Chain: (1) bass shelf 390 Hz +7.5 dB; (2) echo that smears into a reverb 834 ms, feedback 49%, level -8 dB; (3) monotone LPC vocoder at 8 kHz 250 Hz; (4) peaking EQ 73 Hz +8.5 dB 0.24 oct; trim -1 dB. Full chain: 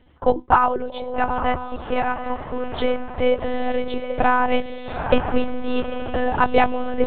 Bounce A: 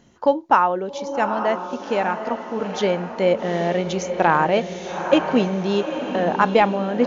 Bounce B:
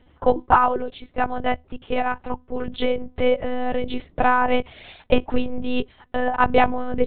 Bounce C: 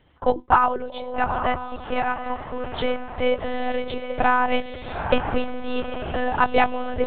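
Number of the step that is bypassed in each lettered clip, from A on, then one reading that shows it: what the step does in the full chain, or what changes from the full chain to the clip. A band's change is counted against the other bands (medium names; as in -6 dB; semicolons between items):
3, 2 kHz band -2.5 dB; 2, momentary loudness spread change +3 LU; 1, 250 Hz band -2.5 dB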